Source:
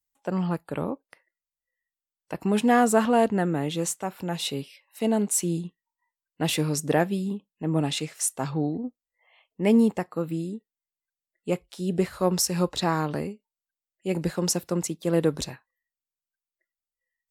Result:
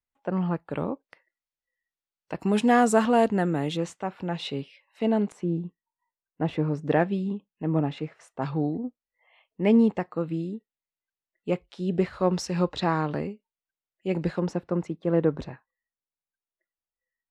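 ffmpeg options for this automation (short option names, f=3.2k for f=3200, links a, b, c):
-af "asetnsamples=n=441:p=0,asendcmd='0.7 lowpass f 4800;2.39 lowpass f 8200;3.77 lowpass f 3100;5.32 lowpass f 1300;6.86 lowpass f 2900;7.79 lowpass f 1500;8.42 lowpass f 3500;14.4 lowpass f 1700',lowpass=2.4k"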